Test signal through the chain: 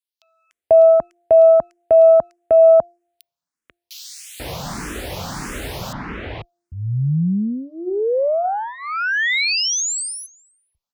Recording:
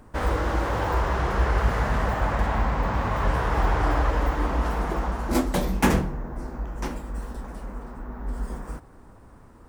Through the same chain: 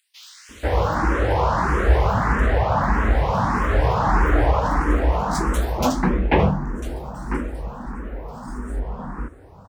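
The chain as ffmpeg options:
-filter_complex "[0:a]bandreject=f=346.4:t=h:w=4,bandreject=f=692.8:t=h:w=4,aeval=exprs='0.562*(cos(1*acos(clip(val(0)/0.562,-1,1)))-cos(1*PI/2))+0.0126*(cos(6*acos(clip(val(0)/0.562,-1,1)))-cos(6*PI/2))':c=same,highpass=42,highshelf=f=9.5k:g=-10,acrossover=split=3100[a][b];[a]adelay=490[c];[c][b]amix=inputs=2:normalize=0,asplit=2[d][e];[e]afreqshift=1.6[f];[d][f]amix=inputs=2:normalize=1,volume=8.5dB"

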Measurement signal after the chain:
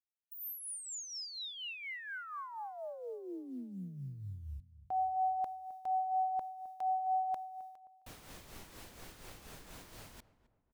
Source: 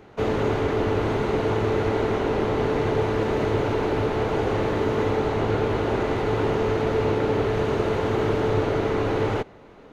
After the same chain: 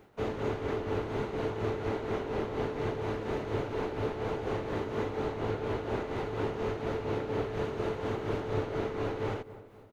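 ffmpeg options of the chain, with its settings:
-filter_complex "[0:a]acrusher=bits=10:mix=0:aa=0.000001,tremolo=f=4.2:d=0.53,asplit=2[a][b];[b]adelay=263,lowpass=f=1.3k:p=1,volume=-15.5dB,asplit=2[c][d];[d]adelay=263,lowpass=f=1.3k:p=1,volume=0.43,asplit=2[e][f];[f]adelay=263,lowpass=f=1.3k:p=1,volume=0.43,asplit=2[g][h];[h]adelay=263,lowpass=f=1.3k:p=1,volume=0.43[i];[a][c][e][g][i]amix=inputs=5:normalize=0,volume=-8dB"

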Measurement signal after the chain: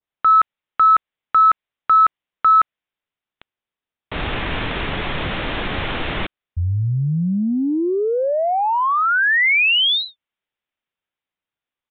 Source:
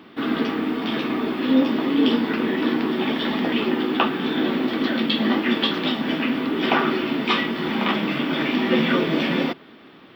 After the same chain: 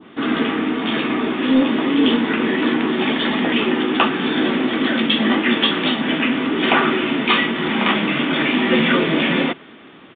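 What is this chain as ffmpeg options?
-af "acontrast=80,adynamicequalizer=threshold=0.0447:dfrequency=2300:dqfactor=0.81:tfrequency=2300:tqfactor=0.81:attack=5:release=100:ratio=0.375:range=2:mode=boostabove:tftype=bell,aresample=8000,aresample=44100,volume=-3.5dB"

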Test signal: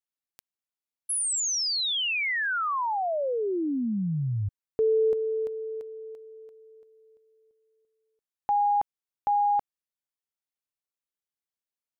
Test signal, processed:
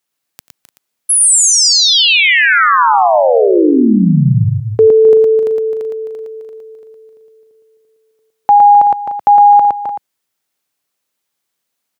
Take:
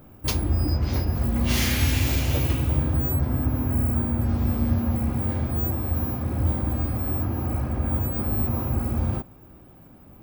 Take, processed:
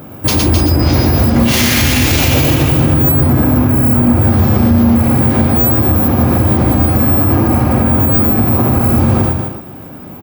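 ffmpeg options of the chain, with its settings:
-filter_complex "[0:a]highpass=110,asplit=2[a][b];[b]aecho=0:1:91|112|261|298|380:0.112|0.668|0.376|0.178|0.178[c];[a][c]amix=inputs=2:normalize=0,alimiter=level_in=18.5dB:limit=-1dB:release=50:level=0:latency=1,volume=-1dB"

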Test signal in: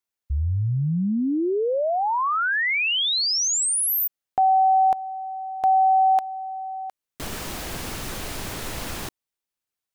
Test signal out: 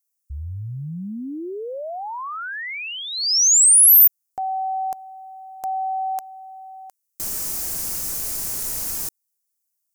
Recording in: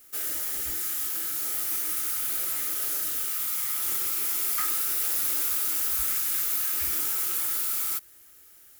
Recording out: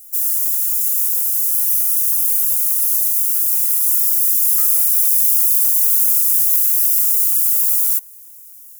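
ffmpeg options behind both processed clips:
-af "aexciter=amount=7.8:drive=4.3:freq=5.1k,volume=-7.5dB"

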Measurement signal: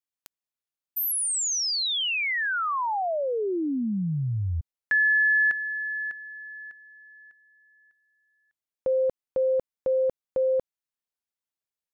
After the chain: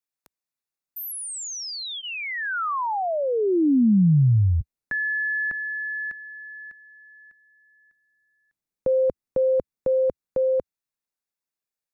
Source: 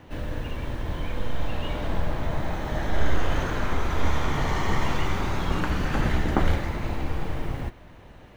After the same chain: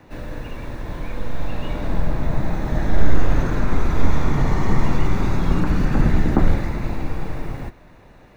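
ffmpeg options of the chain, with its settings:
-filter_complex "[0:a]equalizer=f=75:t=o:w=0.68:g=-6.5,bandreject=f=3.1k:w=6.2,acrossover=split=320|1400[a][b][c];[a]dynaudnorm=f=210:g=17:m=10.5dB[d];[c]alimiter=level_in=7dB:limit=-24dB:level=0:latency=1:release=35,volume=-7dB[e];[d][b][e]amix=inputs=3:normalize=0,volume=1dB"

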